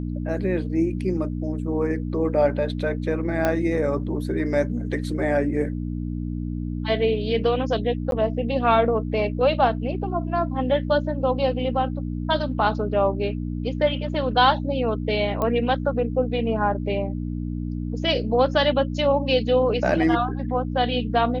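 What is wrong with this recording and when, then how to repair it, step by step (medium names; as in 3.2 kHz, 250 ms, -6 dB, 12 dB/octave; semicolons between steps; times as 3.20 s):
hum 60 Hz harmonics 5 -28 dBFS
3.45 s: pop -9 dBFS
8.11–8.12 s: dropout 12 ms
15.42 s: pop -13 dBFS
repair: de-click; de-hum 60 Hz, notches 5; interpolate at 8.11 s, 12 ms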